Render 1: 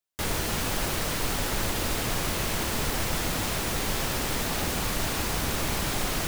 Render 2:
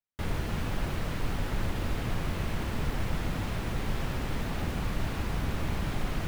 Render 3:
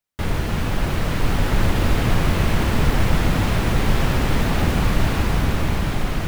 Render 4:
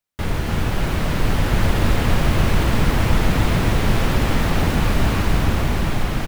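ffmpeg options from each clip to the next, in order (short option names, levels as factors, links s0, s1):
-af "bass=f=250:g=8,treble=f=4000:g=-12,volume=0.473"
-af "dynaudnorm=f=270:g=9:m=1.58,volume=2.82"
-af "aecho=1:1:274:0.531"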